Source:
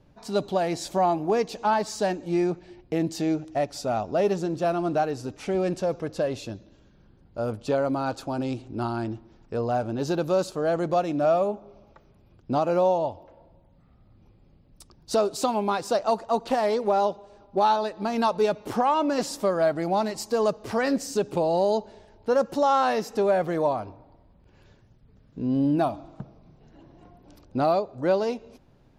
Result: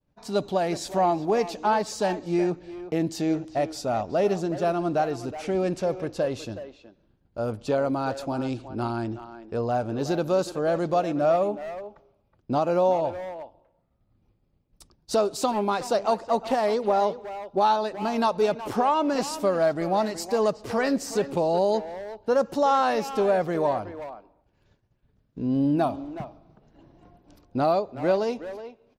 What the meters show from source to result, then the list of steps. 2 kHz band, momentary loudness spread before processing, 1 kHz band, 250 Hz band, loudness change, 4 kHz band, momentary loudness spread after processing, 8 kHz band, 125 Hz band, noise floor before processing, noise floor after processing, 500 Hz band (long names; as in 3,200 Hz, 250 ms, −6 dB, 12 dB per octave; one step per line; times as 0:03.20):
+0.5 dB, 9 LU, 0.0 dB, 0.0 dB, 0.0 dB, 0.0 dB, 12 LU, 0.0 dB, 0.0 dB, −58 dBFS, −69 dBFS, 0.0 dB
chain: downward expander −47 dBFS
far-end echo of a speakerphone 370 ms, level −11 dB